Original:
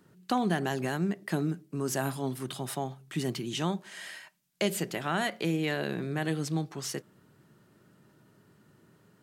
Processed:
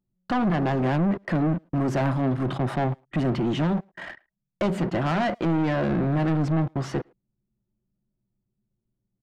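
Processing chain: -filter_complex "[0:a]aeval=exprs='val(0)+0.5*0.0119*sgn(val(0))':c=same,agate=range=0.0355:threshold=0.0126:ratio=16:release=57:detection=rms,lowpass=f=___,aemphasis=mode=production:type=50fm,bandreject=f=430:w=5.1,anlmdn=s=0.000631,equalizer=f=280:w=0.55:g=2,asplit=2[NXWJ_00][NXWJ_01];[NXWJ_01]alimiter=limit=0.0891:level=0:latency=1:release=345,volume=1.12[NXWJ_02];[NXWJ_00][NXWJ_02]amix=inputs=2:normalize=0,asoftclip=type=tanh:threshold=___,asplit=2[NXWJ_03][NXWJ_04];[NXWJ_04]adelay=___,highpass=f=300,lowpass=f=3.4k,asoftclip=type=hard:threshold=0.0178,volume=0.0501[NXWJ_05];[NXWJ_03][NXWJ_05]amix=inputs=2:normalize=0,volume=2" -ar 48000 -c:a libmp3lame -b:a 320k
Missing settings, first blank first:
1.2k, 0.0531, 110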